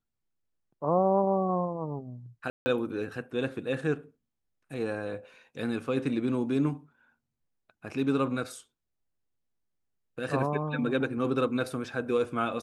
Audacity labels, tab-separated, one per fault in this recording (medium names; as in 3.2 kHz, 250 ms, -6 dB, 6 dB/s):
2.500000	2.660000	dropout 160 ms